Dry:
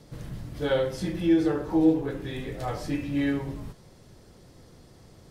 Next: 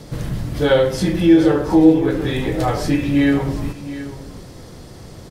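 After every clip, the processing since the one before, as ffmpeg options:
-filter_complex "[0:a]asplit=2[a][b];[b]acompressor=threshold=-33dB:ratio=6,volume=-1dB[c];[a][c]amix=inputs=2:normalize=0,aecho=1:1:722:0.2,volume=8.5dB"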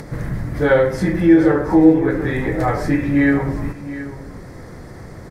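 -af "highshelf=f=2.4k:t=q:w=3:g=-6.5,acompressor=mode=upward:threshold=-30dB:ratio=2.5"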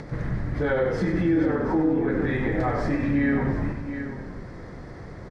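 -filter_complex "[0:a]alimiter=limit=-12dB:level=0:latency=1:release=88,lowpass=4.6k,asplit=2[a][b];[b]asplit=8[c][d][e][f][g][h][i][j];[c]adelay=95,afreqshift=-34,volume=-9dB[k];[d]adelay=190,afreqshift=-68,volume=-13dB[l];[e]adelay=285,afreqshift=-102,volume=-17dB[m];[f]adelay=380,afreqshift=-136,volume=-21dB[n];[g]adelay=475,afreqshift=-170,volume=-25.1dB[o];[h]adelay=570,afreqshift=-204,volume=-29.1dB[p];[i]adelay=665,afreqshift=-238,volume=-33.1dB[q];[j]adelay=760,afreqshift=-272,volume=-37.1dB[r];[k][l][m][n][o][p][q][r]amix=inputs=8:normalize=0[s];[a][s]amix=inputs=2:normalize=0,volume=-4dB"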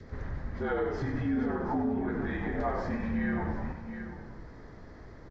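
-af "adynamicequalizer=threshold=0.00631:dfrequency=910:dqfactor=1.7:tfrequency=910:tqfactor=1.7:attack=5:release=100:ratio=0.375:range=3.5:mode=boostabove:tftype=bell,afreqshift=-58,aresample=16000,aresample=44100,volume=-8.5dB"

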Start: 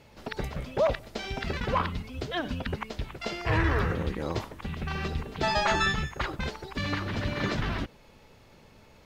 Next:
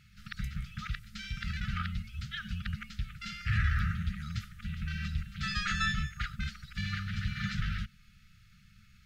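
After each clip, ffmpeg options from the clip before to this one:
-af "lowshelf=f=130:g=4.5,afftfilt=real='re*(1-between(b*sr/4096,220,1200))':imag='im*(1-between(b*sr/4096,220,1200))':win_size=4096:overlap=0.75,volume=-4.5dB"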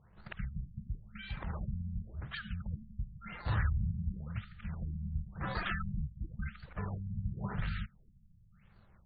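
-af "acrusher=samples=9:mix=1:aa=0.000001:lfo=1:lforange=14.4:lforate=1.5,afftfilt=real='re*lt(b*sr/1024,220*pow(4800/220,0.5+0.5*sin(2*PI*0.94*pts/sr)))':imag='im*lt(b*sr/1024,220*pow(4800/220,0.5+0.5*sin(2*PI*0.94*pts/sr)))':win_size=1024:overlap=0.75,volume=-2.5dB"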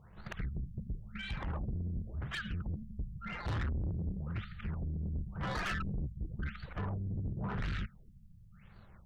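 -af "asoftclip=type=tanh:threshold=-37.5dB,volume=5.5dB"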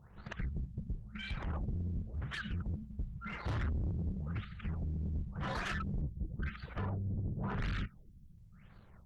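-ar 48000 -c:a libopus -b:a 16k

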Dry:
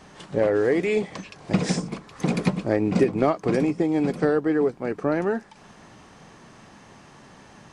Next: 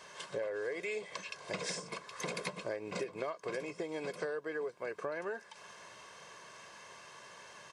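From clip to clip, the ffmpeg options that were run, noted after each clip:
-af "highpass=f=990:p=1,aecho=1:1:1.9:0.65,acompressor=threshold=-35dB:ratio=5,volume=-1dB"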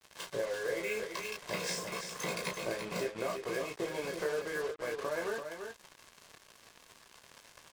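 -filter_complex "[0:a]asplit=2[a][b];[b]aecho=0:1:18|33:0.631|0.562[c];[a][c]amix=inputs=2:normalize=0,acrusher=bits=6:mix=0:aa=0.5,asplit=2[d][e];[e]aecho=0:1:338:0.447[f];[d][f]amix=inputs=2:normalize=0"

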